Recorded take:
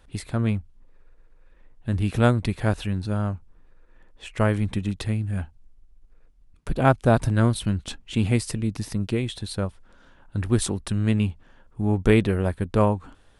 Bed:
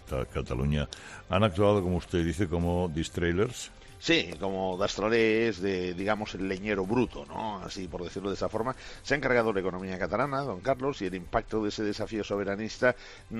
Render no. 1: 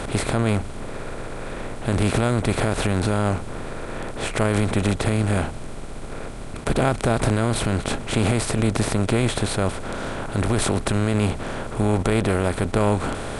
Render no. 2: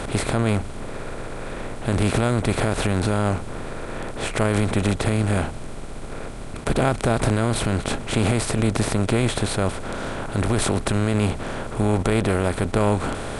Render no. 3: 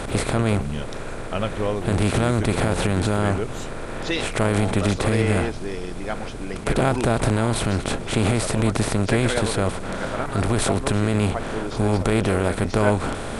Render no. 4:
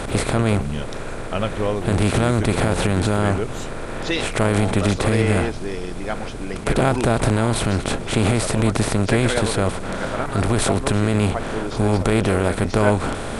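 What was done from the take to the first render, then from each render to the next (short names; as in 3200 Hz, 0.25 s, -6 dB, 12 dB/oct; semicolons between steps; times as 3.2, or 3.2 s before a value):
per-bin compression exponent 0.4; limiter -8.5 dBFS, peak gain reduction 8 dB
nothing audible
add bed -1.5 dB
gain +2 dB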